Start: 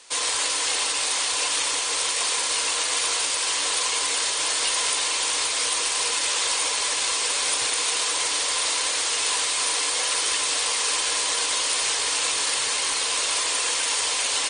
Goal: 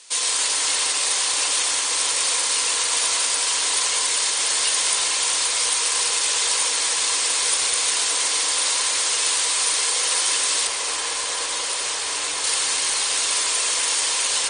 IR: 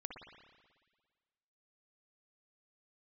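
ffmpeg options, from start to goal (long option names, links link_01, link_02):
-filter_complex "[0:a]asetnsamples=nb_out_samples=441:pad=0,asendcmd='10.67 highshelf g 3.5;12.44 highshelf g 8.5',highshelf=frequency=2400:gain=9[link_01];[1:a]atrim=start_sample=2205,asetrate=23814,aresample=44100[link_02];[link_01][link_02]afir=irnorm=-1:irlink=0,volume=-2.5dB"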